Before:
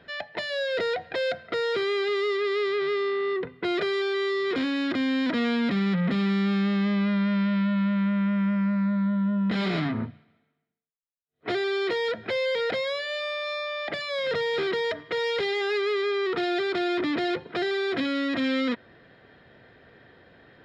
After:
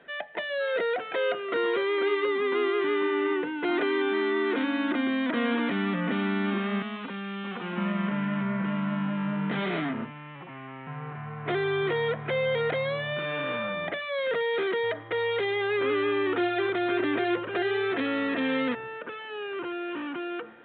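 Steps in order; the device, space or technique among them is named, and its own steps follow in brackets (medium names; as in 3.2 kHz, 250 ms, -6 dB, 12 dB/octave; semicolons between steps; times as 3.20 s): 6.82–7.78 s: inverse Chebyshev high-pass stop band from 1.4 kHz, stop band 40 dB; ever faster or slower copies 488 ms, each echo -5 st, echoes 2, each echo -6 dB; telephone (band-pass 250–3400 Hz; A-law 64 kbps 8 kHz)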